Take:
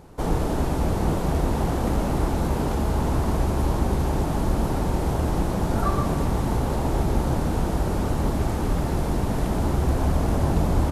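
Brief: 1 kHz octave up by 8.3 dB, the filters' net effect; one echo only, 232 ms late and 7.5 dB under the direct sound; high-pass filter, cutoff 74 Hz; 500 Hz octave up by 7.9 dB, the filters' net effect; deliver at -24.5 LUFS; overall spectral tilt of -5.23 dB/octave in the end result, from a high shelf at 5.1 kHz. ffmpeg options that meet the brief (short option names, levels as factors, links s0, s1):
-af "highpass=74,equalizer=f=500:t=o:g=8,equalizer=f=1000:t=o:g=7.5,highshelf=f=5100:g=4.5,aecho=1:1:232:0.422,volume=0.631"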